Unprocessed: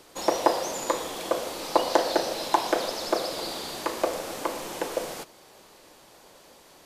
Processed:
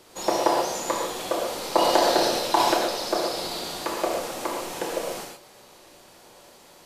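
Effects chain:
0:01.47–0:02.74: transient designer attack +1 dB, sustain +8 dB
reverb whose tail is shaped and stops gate 160 ms flat, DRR −1 dB
level −1.5 dB

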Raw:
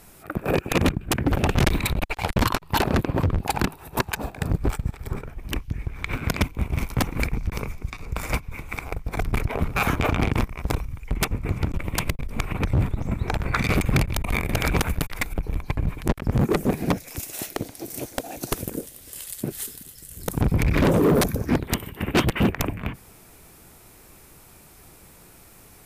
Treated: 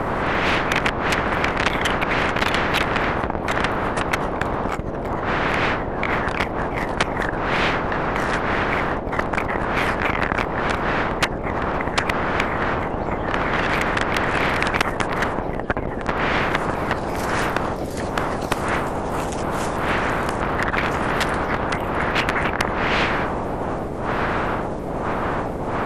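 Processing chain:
pitch shifter swept by a sawtooth −7 semitones, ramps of 335 ms
wind on the microphone 520 Hz −21 dBFS
low-pass filter 2,100 Hz 6 dB per octave
spectral tilt −2.5 dB per octave
every bin compressed towards the loudest bin 10 to 1
level −11 dB

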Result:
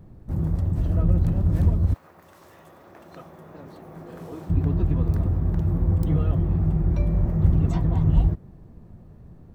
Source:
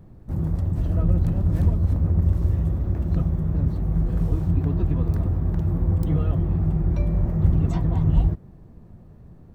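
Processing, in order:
0:01.93–0:04.49: high-pass filter 1,200 Hz → 340 Hz 12 dB per octave

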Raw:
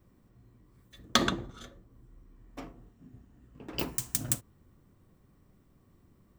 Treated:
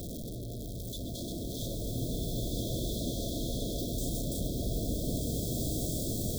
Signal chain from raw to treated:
sign of each sample alone
brick-wall band-stop 720–3,200 Hz
echo through a band-pass that steps 125 ms, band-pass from 3,300 Hz, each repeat −0.7 octaves, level −10.5 dB
slow-attack reverb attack 1,990 ms, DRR −5.5 dB

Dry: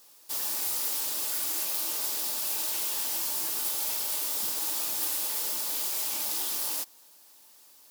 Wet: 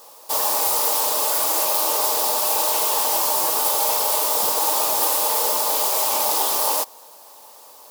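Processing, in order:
flat-topped bell 710 Hz +13 dB
level +9 dB

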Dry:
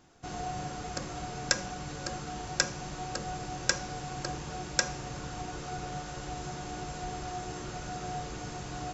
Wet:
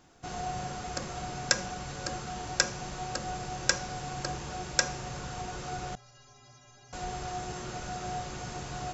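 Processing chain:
mains-hum notches 50/100/150/200/250/300/350/400/450 Hz
0:05.95–0:06.93: stiff-string resonator 120 Hz, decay 0.82 s, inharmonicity 0.03
level +1.5 dB

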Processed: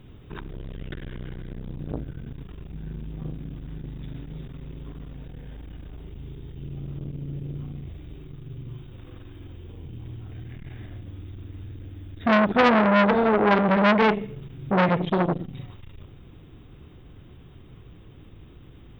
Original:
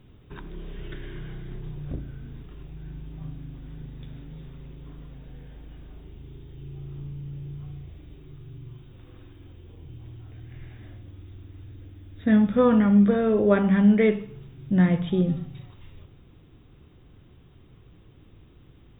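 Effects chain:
saturating transformer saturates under 1,800 Hz
level +6 dB

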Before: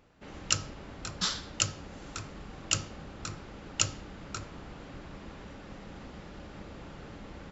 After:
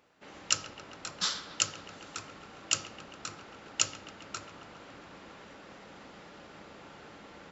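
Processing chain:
high-pass filter 470 Hz 6 dB per octave
on a send: delay with a low-pass on its return 136 ms, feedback 74%, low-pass 2,700 Hz, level −13 dB

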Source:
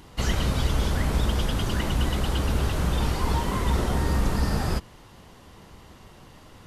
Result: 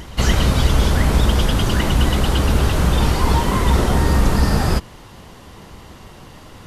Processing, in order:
backwards echo 284 ms −21.5 dB
level +8.5 dB

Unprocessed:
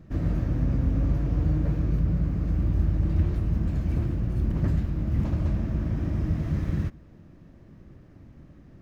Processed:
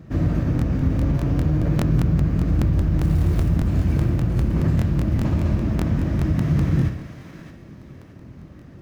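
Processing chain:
high-pass filter 61 Hz 12 dB per octave
brickwall limiter −20 dBFS, peak gain reduction 5.5 dB
0:03.01–0:03.49: floating-point word with a short mantissa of 4 bits
feedback echo with a high-pass in the loop 616 ms, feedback 32%, high-pass 1,000 Hz, level −8 dB
on a send at −6 dB: convolution reverb RT60 0.85 s, pre-delay 45 ms
on the sum: regular buffer underruns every 0.20 s, samples 1,024, repeat, from 0:00.57
level +7.5 dB

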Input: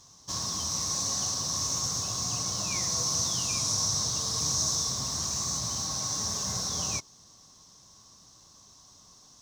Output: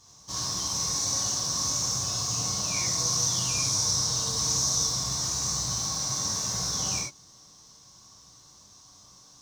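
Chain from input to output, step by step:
reverb whose tail is shaped and stops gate 120 ms flat, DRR −4.5 dB
level −3.5 dB

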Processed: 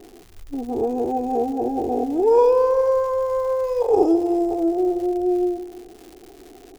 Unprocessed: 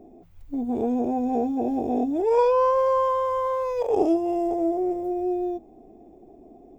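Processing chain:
flat-topped bell 2,600 Hz −9 dB 1.3 octaves
comb filter 2.4 ms, depth 55%
repeating echo 165 ms, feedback 46%, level −14 dB
surface crackle 230 per second −37 dBFS
level +2 dB

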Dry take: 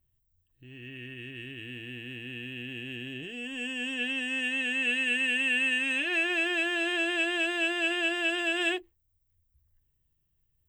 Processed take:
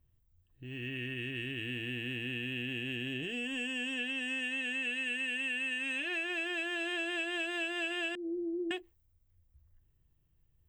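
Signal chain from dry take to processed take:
0:08.15–0:08.71: Butterworth low-pass 510 Hz 72 dB per octave
downward compressor 6 to 1, threshold −39 dBFS, peak gain reduction 14 dB
one half of a high-frequency compander decoder only
level +5 dB

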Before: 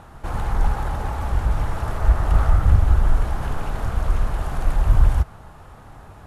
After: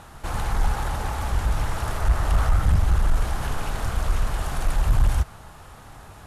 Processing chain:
high-shelf EQ 2,300 Hz +11.5 dB
sine wavefolder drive 3 dB, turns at −2.5 dBFS
highs frequency-modulated by the lows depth 0.27 ms
level −9 dB

